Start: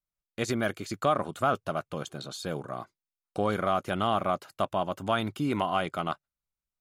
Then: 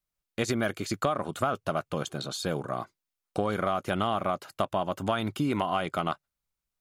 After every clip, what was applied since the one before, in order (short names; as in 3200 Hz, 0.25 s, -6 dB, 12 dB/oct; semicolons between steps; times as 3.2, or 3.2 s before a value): compressor, threshold -28 dBFS, peak gain reduction 9 dB; gain +4.5 dB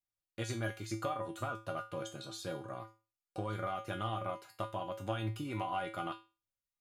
resonator 110 Hz, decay 0.31 s, harmonics odd, mix 90%; gain +2 dB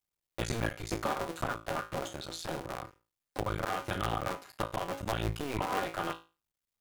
cycle switcher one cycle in 2, muted; gain +7 dB